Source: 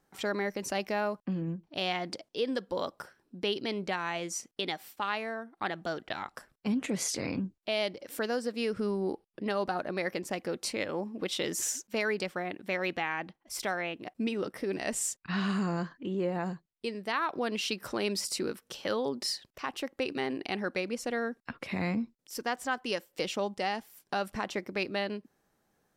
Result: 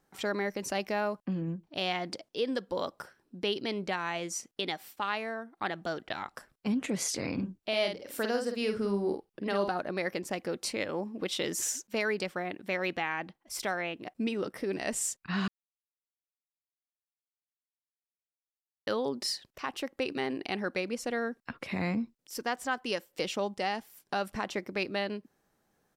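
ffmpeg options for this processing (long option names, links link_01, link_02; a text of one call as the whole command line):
ffmpeg -i in.wav -filter_complex "[0:a]asplit=3[link_01][link_02][link_03];[link_01]afade=type=out:start_time=7.38:duration=0.02[link_04];[link_02]asplit=2[link_05][link_06];[link_06]adelay=50,volume=-5.5dB[link_07];[link_05][link_07]amix=inputs=2:normalize=0,afade=type=in:start_time=7.38:duration=0.02,afade=type=out:start_time=9.69:duration=0.02[link_08];[link_03]afade=type=in:start_time=9.69:duration=0.02[link_09];[link_04][link_08][link_09]amix=inputs=3:normalize=0,asplit=3[link_10][link_11][link_12];[link_10]atrim=end=15.48,asetpts=PTS-STARTPTS,afade=type=out:start_time=15.476:duration=0.004:curve=hsin[link_13];[link_11]atrim=start=15.48:end=18.87,asetpts=PTS-STARTPTS,volume=0[link_14];[link_12]atrim=start=18.87,asetpts=PTS-STARTPTS,afade=type=in:duration=0.004:curve=hsin[link_15];[link_13][link_14][link_15]concat=n=3:v=0:a=1" out.wav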